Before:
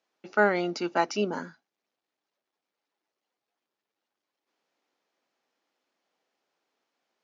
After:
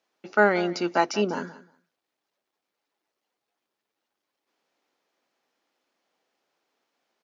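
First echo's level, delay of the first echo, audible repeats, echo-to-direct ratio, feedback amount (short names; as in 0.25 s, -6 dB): -17.5 dB, 0.182 s, 2, -17.5 dB, 16%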